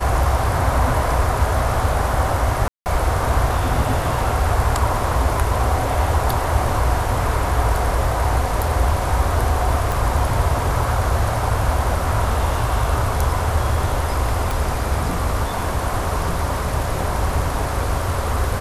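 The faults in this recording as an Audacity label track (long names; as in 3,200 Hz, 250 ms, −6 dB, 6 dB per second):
2.680000	2.860000	drop-out 179 ms
9.920000	9.920000	click
14.510000	14.510000	click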